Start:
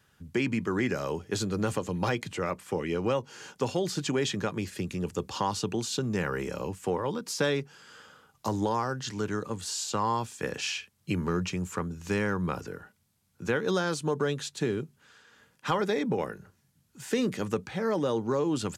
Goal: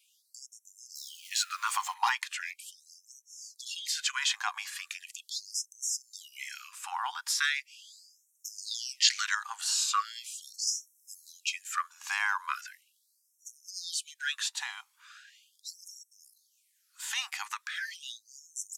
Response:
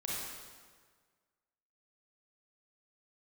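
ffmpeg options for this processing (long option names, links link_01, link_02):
-filter_complex "[0:a]asettb=1/sr,asplit=3[link_01][link_02][link_03];[link_01]atrim=end=0.954[link_04];[link_02]atrim=start=0.95:end=1.94,asetpts=PTS-STARTPTS,afade=type=in:duration=0.004:curve=qsin,afade=type=out:start_time=0.986:duration=0.004:curve=qsin,aeval=exprs='val(0)+0.5*0.00841*sgn(val(0))':channel_layout=same[link_05];[link_03]atrim=start=1.936[link_06];[link_04][link_05]acrossfade=duration=0.004:curve1=hsin:curve2=qsin[link_07];[link_07][link_06]acrossfade=duration=0.004:curve1=qsin:curve2=hsin,asettb=1/sr,asplit=3[link_08][link_09][link_10];[link_08]atrim=end=10.674[link_11];[link_09]atrim=start=10.67:end=11.32,asetpts=PTS-STARTPTS,afade=type=in:duration=0.004:curve=qsin,afade=type=out:start_time=0.646:duration=0.004:curve=qsin,highshelf=frequency=6000:gain=7.5[link_12];[link_10]atrim=start=11.316[link_13];[link_11][link_12]acrossfade=duration=0.004:curve1=hsin:curve2=qsin[link_14];[link_14][link_13]acrossfade=duration=0.004:curve1=qsin:curve2=hsin,flanger=delay=0.1:depth=1.9:regen=50:speed=0.12:shape=triangular,asettb=1/sr,asplit=3[link_15][link_16][link_17];[link_15]atrim=end=8.584[link_18];[link_16]atrim=start=8.58:end=9.35,asetpts=PTS-STARTPTS,afade=type=in:duration=0.004:curve=qsin,afade=type=out:start_time=0.766:duration=0.004:curve=qsin,equalizer=frequency=4000:width=0.48:gain=11.5[link_19];[link_17]atrim=start=9.346[link_20];[link_18][link_19]acrossfade=duration=0.004:curve1=hsin:curve2=qsin[link_21];[link_21][link_20]acrossfade=duration=0.004:curve1=qsin:curve2=hsin,afftfilt=real='re*gte(b*sr/1024,720*pow(5500/720,0.5+0.5*sin(2*PI*0.39*pts/sr)))':imag='im*gte(b*sr/1024,720*pow(5500/720,0.5+0.5*sin(2*PI*0.39*pts/sr)))':win_size=1024:overlap=0.75,volume=9dB"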